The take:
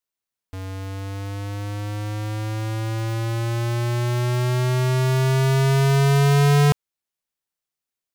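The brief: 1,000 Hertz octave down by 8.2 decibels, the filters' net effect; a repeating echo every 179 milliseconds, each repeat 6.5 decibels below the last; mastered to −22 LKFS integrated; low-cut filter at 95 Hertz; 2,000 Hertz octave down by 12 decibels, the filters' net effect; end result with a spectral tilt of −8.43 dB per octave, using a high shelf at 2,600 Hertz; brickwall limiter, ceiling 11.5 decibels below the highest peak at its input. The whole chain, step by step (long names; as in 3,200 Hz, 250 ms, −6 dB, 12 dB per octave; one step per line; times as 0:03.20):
high-pass filter 95 Hz
parametric band 1,000 Hz −8 dB
parametric band 2,000 Hz −9 dB
high-shelf EQ 2,600 Hz −9 dB
brickwall limiter −22 dBFS
repeating echo 179 ms, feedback 47%, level −6.5 dB
level +7 dB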